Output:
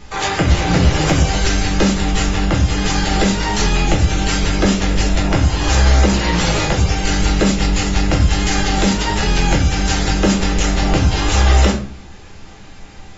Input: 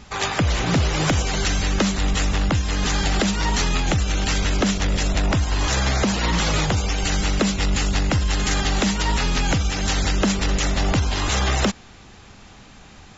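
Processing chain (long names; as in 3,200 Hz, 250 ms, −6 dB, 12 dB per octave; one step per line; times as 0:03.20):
rectangular room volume 41 cubic metres, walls mixed, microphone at 0.81 metres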